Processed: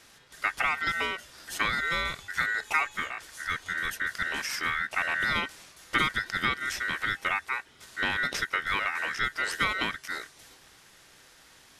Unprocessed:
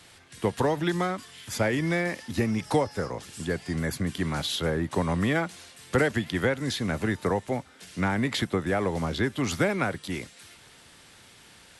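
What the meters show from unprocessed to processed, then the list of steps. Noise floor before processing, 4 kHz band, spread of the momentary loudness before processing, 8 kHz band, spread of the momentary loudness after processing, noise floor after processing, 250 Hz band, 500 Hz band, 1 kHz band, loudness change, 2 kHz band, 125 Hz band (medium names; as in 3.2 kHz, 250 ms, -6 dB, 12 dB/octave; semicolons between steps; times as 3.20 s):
-53 dBFS, +1.5 dB, 9 LU, -2.0 dB, 9 LU, -57 dBFS, -15.5 dB, -15.0 dB, +1.0 dB, -1.0 dB, +5.5 dB, -16.0 dB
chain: ring modulator 1.7 kHz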